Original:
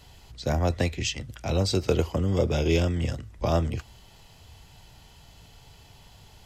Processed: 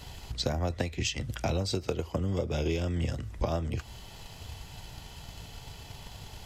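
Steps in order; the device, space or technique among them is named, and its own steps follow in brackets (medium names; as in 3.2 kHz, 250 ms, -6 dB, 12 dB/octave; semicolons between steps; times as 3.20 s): drum-bus smash (transient shaper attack +6 dB, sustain 0 dB; compression 8:1, threshold -32 dBFS, peak gain reduction 18.5 dB; saturation -21 dBFS, distortion -25 dB); trim +5.5 dB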